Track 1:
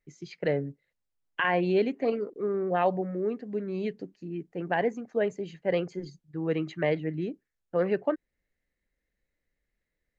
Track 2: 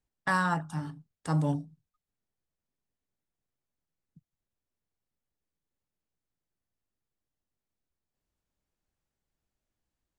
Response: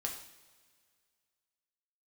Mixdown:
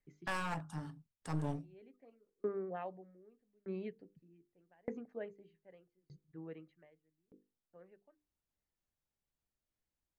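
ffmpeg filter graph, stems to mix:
-filter_complex "[0:a]lowpass=3.1k,bandreject=f=50:t=h:w=6,bandreject=f=100:t=h:w=6,bandreject=f=150:t=h:w=6,bandreject=f=200:t=h:w=6,bandreject=f=250:t=h:w=6,bandreject=f=300:t=h:w=6,bandreject=f=350:t=h:w=6,bandreject=f=400:t=h:w=6,bandreject=f=450:t=h:w=6,bandreject=f=500:t=h:w=6,aeval=exprs='val(0)*pow(10,-40*if(lt(mod(0.82*n/s,1),2*abs(0.82)/1000),1-mod(0.82*n/s,1)/(2*abs(0.82)/1000),(mod(0.82*n/s,1)-2*abs(0.82)/1000)/(1-2*abs(0.82)/1000))/20)':c=same,volume=-5.5dB,afade=t=out:st=6.47:d=0.51:silence=0.298538[a];[1:a]aeval=exprs='clip(val(0),-1,0.0188)':c=same,volume=-7.5dB,asplit=2[b][c];[c]apad=whole_len=449239[d];[a][d]sidechaincompress=threshold=-57dB:ratio=12:attack=8.9:release=264[e];[e][b]amix=inputs=2:normalize=0"

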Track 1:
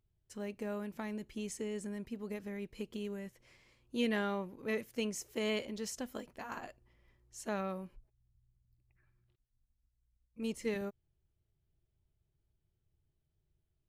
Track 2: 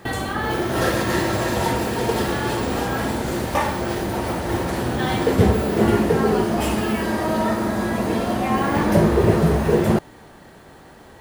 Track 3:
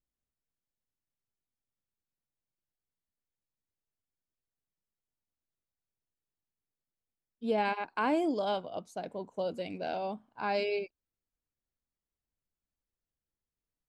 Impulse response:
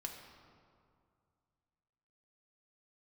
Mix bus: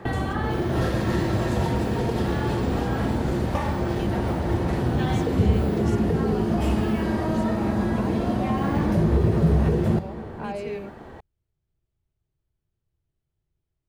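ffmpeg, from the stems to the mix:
-filter_complex "[0:a]volume=0.5dB[a];[1:a]volume=2.5dB,asplit=2[b][c];[c]volume=-9.5dB[d];[2:a]volume=2.5dB[e];[b][e]amix=inputs=2:normalize=0,lowpass=f=1.3k:p=1,alimiter=limit=-10.5dB:level=0:latency=1:release=99,volume=0dB[f];[3:a]atrim=start_sample=2205[g];[d][g]afir=irnorm=-1:irlink=0[h];[a][f][h]amix=inputs=3:normalize=0,highshelf=f=5.7k:g=-8.5,acrossover=split=210|3000[i][j][k];[j]acompressor=threshold=-30dB:ratio=2.5[l];[i][l][k]amix=inputs=3:normalize=0"

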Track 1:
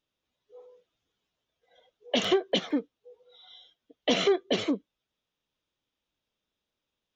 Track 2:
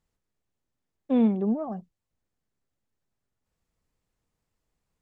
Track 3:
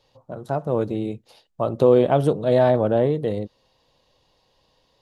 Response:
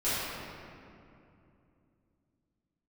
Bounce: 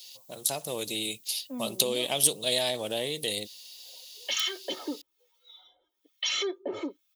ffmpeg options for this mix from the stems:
-filter_complex "[0:a]aecho=1:1:2.3:0.67,acrossover=split=1200[a][b];[a]aeval=exprs='val(0)*(1-1/2+1/2*cos(2*PI*1.1*n/s))':c=same[c];[b]aeval=exprs='val(0)*(1-1/2-1/2*cos(2*PI*1.1*n/s))':c=same[d];[c][d]amix=inputs=2:normalize=0,adelay=2150,volume=2dB[e];[1:a]lowpass=1.6k,adelay=400,volume=-13dB[f];[2:a]acompressor=threshold=-21dB:ratio=2.5,aexciter=amount=6.8:drive=9.2:freq=2.2k,volume=-7.5dB[g];[e][f]amix=inputs=2:normalize=0,aecho=1:1:3.2:0.72,alimiter=limit=-23dB:level=0:latency=1:release=84,volume=0dB[h];[g][h]amix=inputs=2:normalize=0,aemphasis=mode=production:type=bsi"

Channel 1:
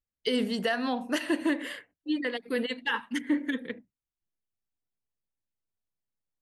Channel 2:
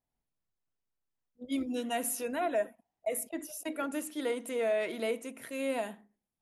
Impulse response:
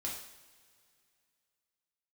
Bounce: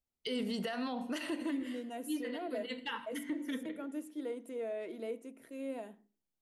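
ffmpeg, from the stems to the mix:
-filter_complex "[0:a]bandreject=f=1.7k:w=7.8,alimiter=limit=-20dB:level=0:latency=1:release=78,volume=-3dB,asplit=2[a][b];[b]volume=-15dB[c];[1:a]equalizer=f=330:w=0.84:g=12.5,volume=-15.5dB,asplit=2[d][e];[e]apad=whole_len=282710[f];[a][f]sidechaincompress=threshold=-54dB:ratio=8:attack=39:release=129[g];[2:a]atrim=start_sample=2205[h];[c][h]afir=irnorm=-1:irlink=0[i];[g][d][i]amix=inputs=3:normalize=0,alimiter=level_in=4dB:limit=-24dB:level=0:latency=1:release=83,volume=-4dB"

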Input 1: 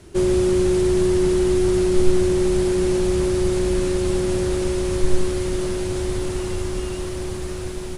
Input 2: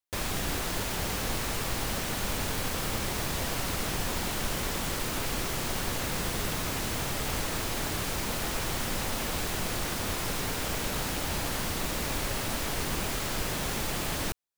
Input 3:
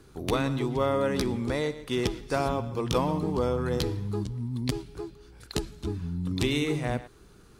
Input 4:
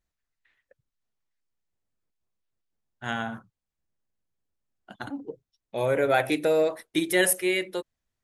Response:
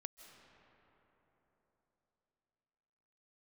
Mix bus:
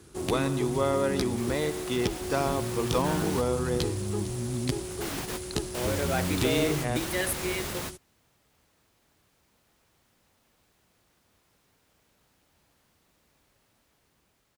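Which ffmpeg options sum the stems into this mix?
-filter_complex "[0:a]crystalizer=i=2.5:c=0,volume=19.5dB,asoftclip=hard,volume=-19.5dB,volume=-14dB[a];[1:a]dynaudnorm=f=290:g=13:m=8dB,adelay=1250,volume=-11dB[b];[2:a]volume=-0.5dB[c];[3:a]acrusher=bits=6:mix=0:aa=0.000001,volume=-8dB,asplit=2[d][e];[e]apad=whole_len=697722[f];[b][f]sidechaingate=range=-33dB:threshold=-48dB:ratio=16:detection=peak[g];[a][g][c][d]amix=inputs=4:normalize=0,highpass=47"

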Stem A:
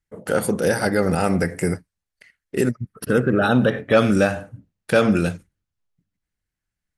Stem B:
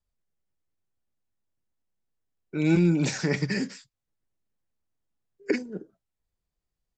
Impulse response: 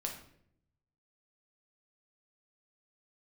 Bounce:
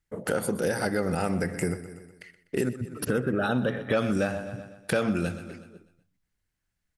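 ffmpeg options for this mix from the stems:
-filter_complex "[0:a]volume=2dB,asplit=3[a][b][c];[b]volume=-16dB[d];[1:a]volume=-15dB[e];[c]apad=whole_len=307785[f];[e][f]sidechaincompress=threshold=-31dB:ratio=8:attack=16:release=344[g];[d]aecho=0:1:124|248|372|496|620|744:1|0.44|0.194|0.0852|0.0375|0.0165[h];[a][g][h]amix=inputs=3:normalize=0,acompressor=threshold=-28dB:ratio=2.5"

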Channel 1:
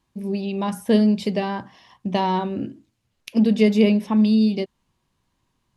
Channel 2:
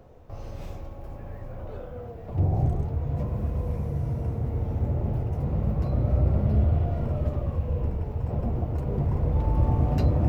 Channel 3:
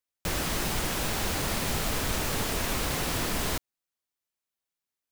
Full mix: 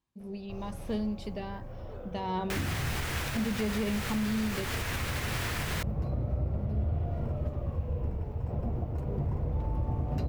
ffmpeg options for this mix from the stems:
-filter_complex "[0:a]acontrast=85,volume=-12dB,afade=t=in:st=2.22:d=0.36:silence=0.334965[a];[1:a]adelay=200,volume=-5dB[b];[2:a]equalizer=f=1.9k:t=o:w=1.7:g=9,adelay=2250,volume=-5dB[c];[a][b][c]amix=inputs=3:normalize=0,alimiter=limit=-22.5dB:level=0:latency=1:release=180"

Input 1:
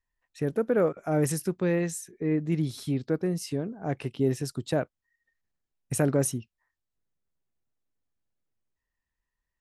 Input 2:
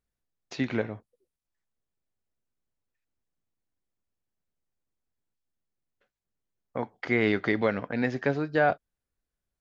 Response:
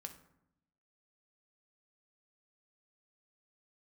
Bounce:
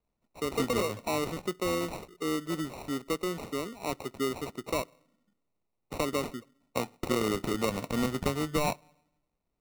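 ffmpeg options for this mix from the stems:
-filter_complex "[0:a]highpass=340,volume=0.5dB,asplit=2[a][b];[b]volume=-16dB[c];[1:a]volume=2dB,asplit=2[d][e];[e]volume=-19dB[f];[2:a]atrim=start_sample=2205[g];[c][f]amix=inputs=2:normalize=0[h];[h][g]afir=irnorm=-1:irlink=0[i];[a][d][i]amix=inputs=3:normalize=0,acrossover=split=170|2300[j][k][l];[j]acompressor=threshold=-41dB:ratio=4[m];[k]acompressor=threshold=-27dB:ratio=4[n];[l]acompressor=threshold=-38dB:ratio=4[o];[m][n][o]amix=inputs=3:normalize=0,acrusher=samples=27:mix=1:aa=0.000001"

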